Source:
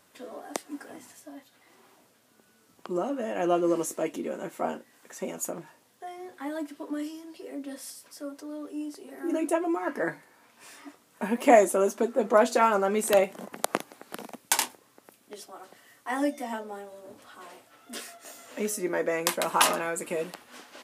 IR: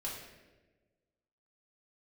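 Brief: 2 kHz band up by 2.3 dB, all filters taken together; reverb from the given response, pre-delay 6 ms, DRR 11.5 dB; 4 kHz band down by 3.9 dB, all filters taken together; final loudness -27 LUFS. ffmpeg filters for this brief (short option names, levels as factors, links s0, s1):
-filter_complex "[0:a]equalizer=f=2000:t=o:g=4.5,equalizer=f=4000:t=o:g=-7.5,asplit=2[s0][s1];[1:a]atrim=start_sample=2205,adelay=6[s2];[s1][s2]afir=irnorm=-1:irlink=0,volume=0.237[s3];[s0][s3]amix=inputs=2:normalize=0,volume=1.06"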